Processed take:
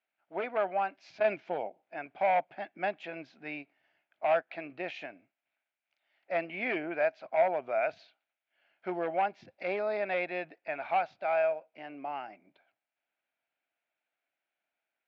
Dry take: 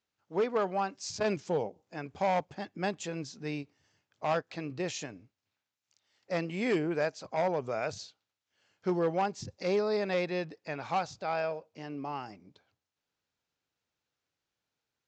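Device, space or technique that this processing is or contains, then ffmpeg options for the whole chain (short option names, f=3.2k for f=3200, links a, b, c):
phone earpiece: -af "highpass=350,equalizer=f=450:t=q:w=4:g=-9,equalizer=f=670:t=q:w=4:g=10,equalizer=f=1.1k:t=q:w=4:g=-6,equalizer=f=1.5k:t=q:w=4:g=4,equalizer=f=2.3k:t=q:w=4:g=7,lowpass=f=3.1k:w=0.5412,lowpass=f=3.1k:w=1.3066,volume=-1dB"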